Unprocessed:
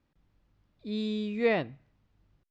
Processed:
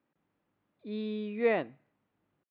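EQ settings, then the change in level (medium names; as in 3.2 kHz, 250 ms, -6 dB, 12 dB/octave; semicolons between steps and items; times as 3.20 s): band-pass 240–3300 Hz; distance through air 190 m; 0.0 dB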